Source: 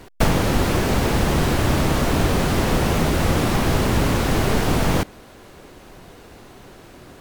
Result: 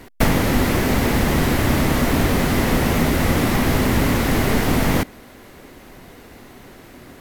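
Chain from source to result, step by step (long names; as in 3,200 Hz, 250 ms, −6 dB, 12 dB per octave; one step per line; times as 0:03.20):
thirty-one-band graphic EQ 250 Hz +6 dB, 2,000 Hz +6 dB, 12,500 Hz +8 dB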